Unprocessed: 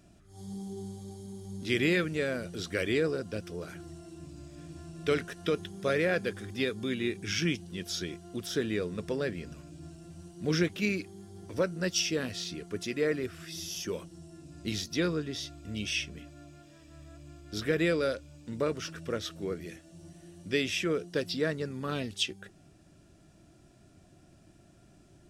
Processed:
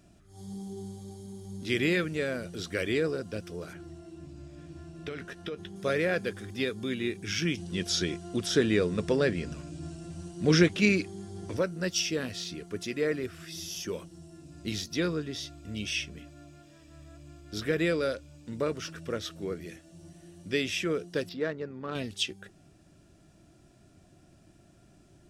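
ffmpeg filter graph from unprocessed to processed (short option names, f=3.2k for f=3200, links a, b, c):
-filter_complex "[0:a]asettb=1/sr,asplit=3[a][b][c];[a]atrim=end=3.734[d];[b]atrim=start=3.73:end=5.76,asetpts=PTS-STARTPTS,afade=t=in:d=0.004:c=qsin,afade=t=out:st=2.026:d=0.004:c=qsin,lowpass=f=3.6k:p=1,acompressor=threshold=-32dB:ratio=12:attack=3.2:release=140:knee=1:detection=peak,asplit=2[e][f];[f]adelay=15,volume=-11.5dB[g];[e][g]amix=inputs=2:normalize=0,atrim=end_sample=89523[h];[c]atrim=start=5.756[i];[d][h]acrossfade=d=0.004:c1=hsin:c2=qsin[j];[j][i]acrossfade=d=0.004:c1=qsin:c2=hsin,asettb=1/sr,asplit=3[k][l][m];[k]atrim=end=7.574[n];[l]atrim=start=7.57:end=11.57,asetpts=PTS-STARTPTS,afade=t=in:d=0.004:c=qsin,afade=t=out:st=3.996:d=0.004:c=qsin,lowpass=f=10k:w=0.5412,lowpass=f=10k:w=1.3066,acontrast=62[o];[m]atrim=start=11.566[p];[n][o]acrossfade=d=0.004:c1=hsin:c2=qsin[q];[q][p]acrossfade=d=0.004:c1=qsin:c2=hsin,asettb=1/sr,asplit=3[r][s][t];[r]atrim=end=21.294[u];[s]atrim=start=21.29:end=21.95,asetpts=PTS-STARTPTS,afade=t=in:d=0.004:c=qsin,afade=t=out:st=0.656:d=0.004:c=qsin,adynamicsmooth=sensitivity=1.5:basefreq=1.8k,bass=f=250:g=-7,treble=f=4k:g=4[v];[t]atrim=start=21.946[w];[u][v]acrossfade=d=0.004:c1=hsin:c2=qsin[x];[x][w]acrossfade=d=0.004:c1=qsin:c2=hsin"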